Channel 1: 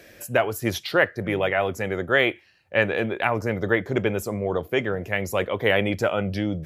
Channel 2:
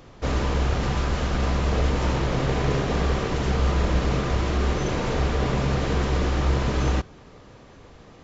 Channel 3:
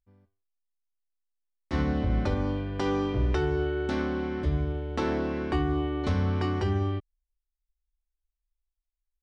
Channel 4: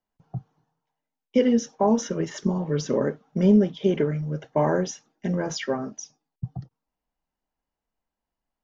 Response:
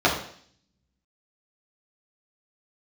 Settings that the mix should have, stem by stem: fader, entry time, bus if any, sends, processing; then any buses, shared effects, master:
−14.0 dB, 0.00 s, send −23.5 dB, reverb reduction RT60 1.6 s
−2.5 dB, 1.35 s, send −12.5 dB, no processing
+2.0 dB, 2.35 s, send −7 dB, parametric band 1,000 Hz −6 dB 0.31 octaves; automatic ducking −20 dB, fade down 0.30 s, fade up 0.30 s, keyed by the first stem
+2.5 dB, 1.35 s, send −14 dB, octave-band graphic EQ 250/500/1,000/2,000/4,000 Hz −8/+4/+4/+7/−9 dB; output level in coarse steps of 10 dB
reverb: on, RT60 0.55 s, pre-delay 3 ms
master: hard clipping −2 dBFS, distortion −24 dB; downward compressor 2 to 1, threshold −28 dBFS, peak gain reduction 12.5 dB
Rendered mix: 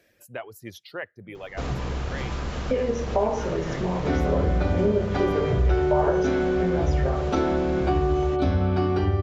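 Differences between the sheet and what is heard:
stem 1: send off
stem 2: send off
master: missing hard clipping −2 dBFS, distortion −24 dB

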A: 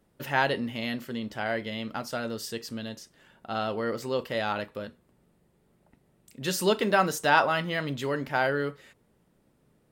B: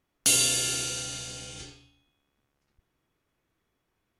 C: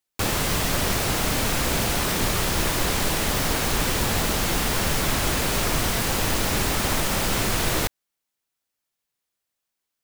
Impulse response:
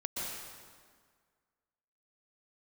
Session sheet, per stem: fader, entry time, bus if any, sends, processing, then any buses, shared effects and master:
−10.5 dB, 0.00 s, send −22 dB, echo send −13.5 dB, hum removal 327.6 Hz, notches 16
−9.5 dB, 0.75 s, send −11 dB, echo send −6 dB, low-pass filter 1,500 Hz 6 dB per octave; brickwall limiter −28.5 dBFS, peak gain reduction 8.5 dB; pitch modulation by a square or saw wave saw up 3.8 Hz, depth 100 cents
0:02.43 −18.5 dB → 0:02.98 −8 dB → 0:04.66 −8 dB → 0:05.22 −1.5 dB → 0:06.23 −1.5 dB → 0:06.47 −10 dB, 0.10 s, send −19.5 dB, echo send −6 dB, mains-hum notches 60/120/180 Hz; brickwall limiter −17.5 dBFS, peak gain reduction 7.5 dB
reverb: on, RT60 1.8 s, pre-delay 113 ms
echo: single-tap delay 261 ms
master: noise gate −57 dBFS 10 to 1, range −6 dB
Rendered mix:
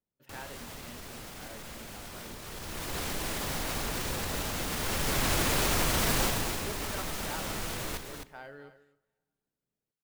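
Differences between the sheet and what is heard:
stem A −10.5 dB → −21.0 dB
stem B: muted

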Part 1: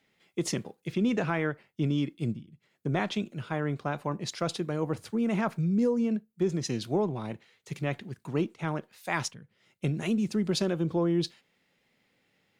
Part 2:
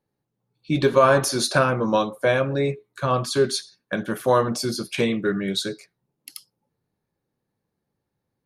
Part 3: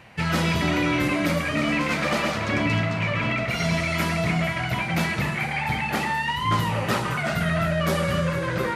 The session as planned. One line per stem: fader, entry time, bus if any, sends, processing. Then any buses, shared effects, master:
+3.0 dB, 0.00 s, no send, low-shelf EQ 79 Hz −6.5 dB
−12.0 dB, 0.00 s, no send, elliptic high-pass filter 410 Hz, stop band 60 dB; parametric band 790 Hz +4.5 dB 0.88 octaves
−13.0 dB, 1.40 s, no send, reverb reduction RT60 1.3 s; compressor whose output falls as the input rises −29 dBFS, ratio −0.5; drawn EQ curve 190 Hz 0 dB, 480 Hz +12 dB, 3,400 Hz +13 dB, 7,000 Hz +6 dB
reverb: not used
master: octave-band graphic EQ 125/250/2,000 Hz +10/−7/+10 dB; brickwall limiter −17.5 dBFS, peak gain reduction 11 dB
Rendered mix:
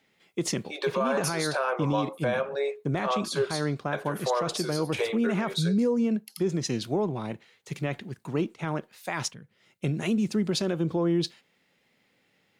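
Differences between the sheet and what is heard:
stem 2 −12.0 dB → −4.5 dB
stem 3: muted
master: missing octave-band graphic EQ 125/250/2,000 Hz +10/−7/+10 dB

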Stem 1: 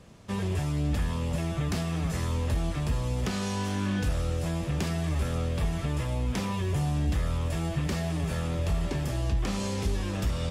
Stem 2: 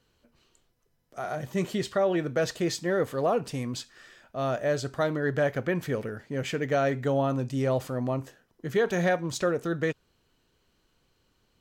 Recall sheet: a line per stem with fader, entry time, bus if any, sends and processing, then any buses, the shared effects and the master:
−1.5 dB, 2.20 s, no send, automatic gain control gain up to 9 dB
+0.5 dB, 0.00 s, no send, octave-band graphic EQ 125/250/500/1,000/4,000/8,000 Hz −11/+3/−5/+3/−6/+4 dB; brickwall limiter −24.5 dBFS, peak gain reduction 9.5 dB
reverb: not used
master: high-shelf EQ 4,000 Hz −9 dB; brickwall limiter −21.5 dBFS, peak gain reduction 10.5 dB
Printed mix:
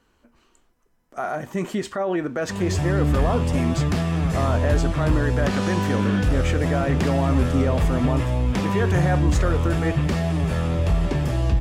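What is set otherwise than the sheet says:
stem 2 +0.5 dB → +8.5 dB
master: missing brickwall limiter −21.5 dBFS, peak gain reduction 10.5 dB

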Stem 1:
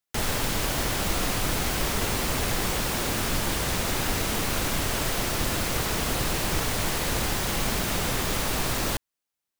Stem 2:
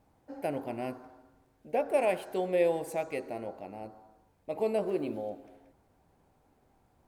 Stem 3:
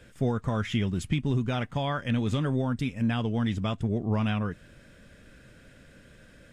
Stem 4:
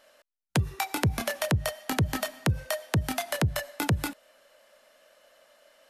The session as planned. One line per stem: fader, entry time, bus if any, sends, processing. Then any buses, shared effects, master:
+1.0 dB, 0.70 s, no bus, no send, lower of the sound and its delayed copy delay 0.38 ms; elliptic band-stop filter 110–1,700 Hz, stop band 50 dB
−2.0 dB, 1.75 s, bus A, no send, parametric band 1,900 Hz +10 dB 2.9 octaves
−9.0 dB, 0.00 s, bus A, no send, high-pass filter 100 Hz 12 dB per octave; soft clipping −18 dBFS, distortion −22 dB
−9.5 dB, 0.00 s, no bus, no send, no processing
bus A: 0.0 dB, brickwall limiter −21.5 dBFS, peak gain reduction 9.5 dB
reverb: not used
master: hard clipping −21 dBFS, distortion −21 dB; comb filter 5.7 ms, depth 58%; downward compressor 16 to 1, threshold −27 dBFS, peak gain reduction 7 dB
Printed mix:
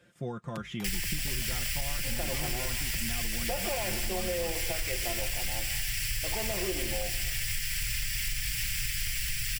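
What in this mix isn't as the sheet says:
stem 3: missing soft clipping −18 dBFS, distortion −22 dB
stem 4 −9.5 dB → −19.5 dB

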